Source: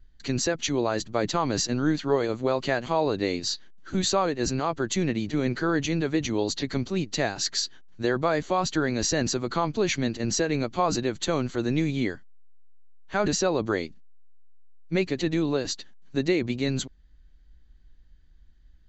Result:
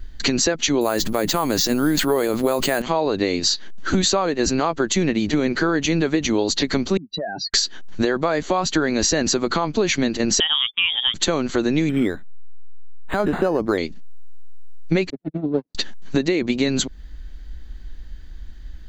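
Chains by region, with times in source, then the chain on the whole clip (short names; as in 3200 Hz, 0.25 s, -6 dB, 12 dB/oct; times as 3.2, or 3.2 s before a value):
0.81–2.82 careless resampling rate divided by 4×, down none, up hold + sustainer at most 45 dB/s
6.97–7.54 spectral contrast raised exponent 3.4 + speaker cabinet 200–3000 Hz, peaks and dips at 310 Hz -6 dB, 790 Hz -5 dB, 1200 Hz -10 dB, 1900 Hz +4 dB + compressor 16:1, threshold -42 dBFS
10.4–11.14 gate -36 dBFS, range -40 dB + inverted band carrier 3500 Hz + three-band expander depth 100%
11.89–13.78 high shelf 3700 Hz -10.5 dB + decimation joined by straight lines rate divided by 8×
15.1–15.75 minimum comb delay 7 ms + gate -25 dBFS, range -56 dB + band-pass 200 Hz, Q 1.2
whole clip: bell 120 Hz -13 dB 0.4 oct; compressor 8:1, threshold -36 dBFS; maximiser +26 dB; gain -6.5 dB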